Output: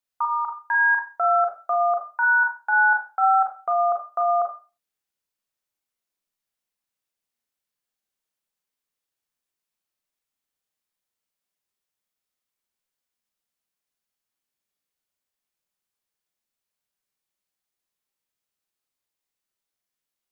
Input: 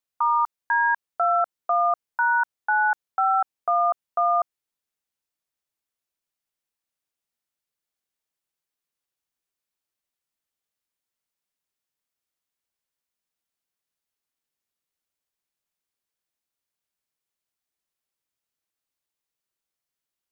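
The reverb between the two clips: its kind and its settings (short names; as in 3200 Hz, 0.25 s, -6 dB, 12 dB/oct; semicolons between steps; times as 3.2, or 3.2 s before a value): Schroeder reverb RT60 0.32 s, combs from 30 ms, DRR 1.5 dB; gain -1.5 dB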